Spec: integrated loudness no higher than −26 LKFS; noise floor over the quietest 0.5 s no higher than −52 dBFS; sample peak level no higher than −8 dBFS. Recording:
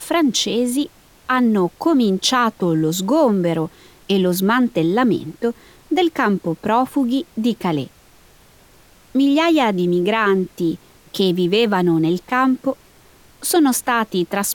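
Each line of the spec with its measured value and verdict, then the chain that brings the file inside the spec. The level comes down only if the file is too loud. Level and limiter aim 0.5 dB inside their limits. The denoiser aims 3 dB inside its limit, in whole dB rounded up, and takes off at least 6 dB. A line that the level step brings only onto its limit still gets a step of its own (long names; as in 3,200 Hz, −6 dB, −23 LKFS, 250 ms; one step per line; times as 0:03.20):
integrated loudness −18.5 LKFS: out of spec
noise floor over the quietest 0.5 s −49 dBFS: out of spec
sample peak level −5.0 dBFS: out of spec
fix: level −8 dB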